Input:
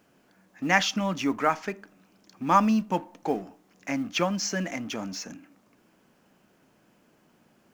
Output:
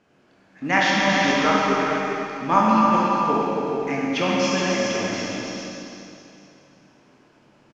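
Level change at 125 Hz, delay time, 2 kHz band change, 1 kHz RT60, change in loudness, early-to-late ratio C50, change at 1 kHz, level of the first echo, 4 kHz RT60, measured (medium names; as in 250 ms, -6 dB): +5.0 dB, 276 ms, +8.0 dB, 2.7 s, +6.5 dB, -5.0 dB, +7.5 dB, -6.0 dB, 2.7 s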